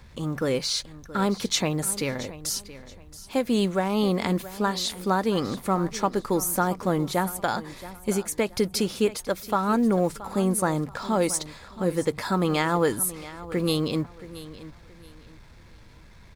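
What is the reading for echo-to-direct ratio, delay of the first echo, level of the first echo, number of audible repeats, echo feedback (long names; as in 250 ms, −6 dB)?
−15.5 dB, 675 ms, −16.0 dB, 2, 28%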